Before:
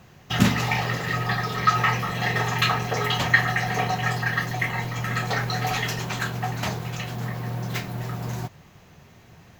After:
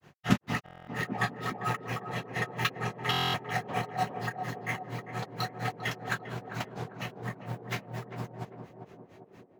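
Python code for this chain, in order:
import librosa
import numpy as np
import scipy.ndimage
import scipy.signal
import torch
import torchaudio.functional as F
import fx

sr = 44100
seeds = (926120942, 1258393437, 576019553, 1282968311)

p1 = fx.highpass(x, sr, hz=150.0, slope=6)
p2 = fx.high_shelf(p1, sr, hz=6700.0, db=-6.5)
p3 = fx.sample_hold(p2, sr, seeds[0], rate_hz=8500.0, jitter_pct=0)
p4 = p2 + F.gain(torch.from_numpy(p3), -7.5).numpy()
p5 = fx.granulator(p4, sr, seeds[1], grain_ms=147.0, per_s=4.3, spray_ms=100.0, spread_st=0)
p6 = p5 + fx.echo_banded(p5, sr, ms=398, feedback_pct=69, hz=380.0, wet_db=-4.0, dry=0)
p7 = fx.buffer_glitch(p6, sr, at_s=(0.64, 3.11), block=1024, repeats=9)
y = F.gain(torch.from_numpy(p7), -4.0).numpy()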